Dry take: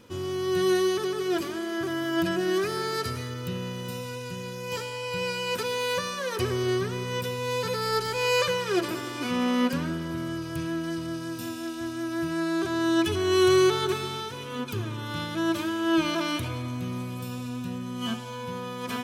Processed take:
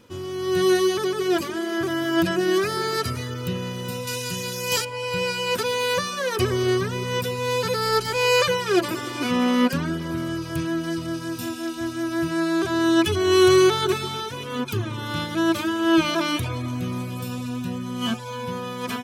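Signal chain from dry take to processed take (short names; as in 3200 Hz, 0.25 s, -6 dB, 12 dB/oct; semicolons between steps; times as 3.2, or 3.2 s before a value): 4.07–4.85 high shelf 2900 Hz +12 dB; reverb removal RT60 0.53 s; AGC gain up to 6 dB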